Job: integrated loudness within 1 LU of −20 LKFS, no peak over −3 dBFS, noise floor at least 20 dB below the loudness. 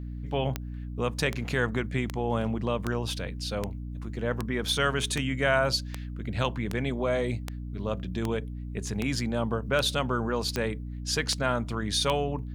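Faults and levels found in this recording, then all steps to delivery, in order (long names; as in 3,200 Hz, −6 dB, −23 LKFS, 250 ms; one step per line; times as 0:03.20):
number of clicks 16; mains hum 60 Hz; hum harmonics up to 300 Hz; level of the hum −34 dBFS; integrated loudness −29.5 LKFS; sample peak −10.0 dBFS; target loudness −20.0 LKFS
→ click removal
hum removal 60 Hz, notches 5
level +9.5 dB
brickwall limiter −3 dBFS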